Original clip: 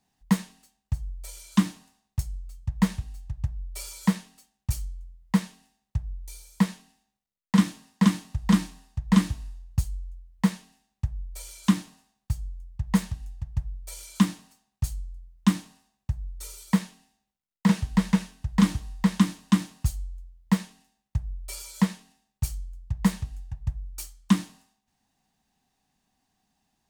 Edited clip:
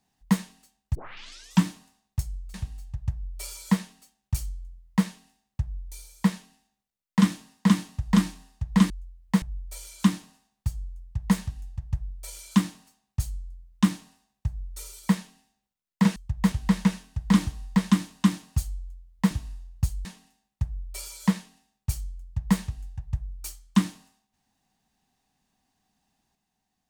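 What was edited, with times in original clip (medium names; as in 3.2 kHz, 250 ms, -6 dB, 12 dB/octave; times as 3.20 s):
0.95 s: tape start 0.69 s
2.54–2.90 s: move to 17.80 s
9.26–10.00 s: move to 20.59 s
10.52–11.06 s: delete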